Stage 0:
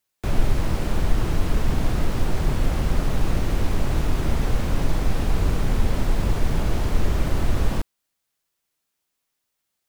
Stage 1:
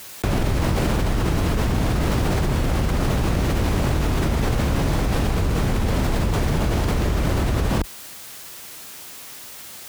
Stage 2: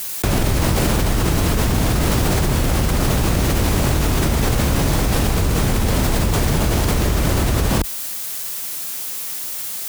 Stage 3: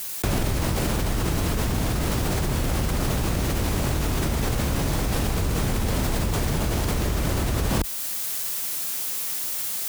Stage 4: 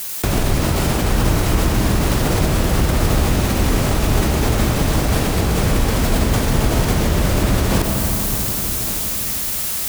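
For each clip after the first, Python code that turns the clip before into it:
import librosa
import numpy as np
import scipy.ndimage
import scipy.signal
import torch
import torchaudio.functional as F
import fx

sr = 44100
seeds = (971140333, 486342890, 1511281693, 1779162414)

y1 = scipy.signal.sosfilt(scipy.signal.butter(2, 45.0, 'highpass', fs=sr, output='sos'), x)
y1 = fx.env_flatten(y1, sr, amount_pct=100)
y2 = fx.high_shelf(y1, sr, hz=5400.0, db=10.5)
y2 = F.gain(torch.from_numpy(y2), 3.0).numpy()
y3 = fx.rider(y2, sr, range_db=10, speed_s=0.5)
y3 = F.gain(torch.from_numpy(y3), -6.0).numpy()
y4 = y3 + 10.0 ** (-13.0 / 20.0) * np.pad(y3, (int(1156 * sr / 1000.0), 0))[:len(y3)]
y4 = fx.rev_freeverb(y4, sr, rt60_s=4.4, hf_ratio=0.6, predelay_ms=55, drr_db=1.5)
y4 = F.gain(torch.from_numpy(y4), 5.0).numpy()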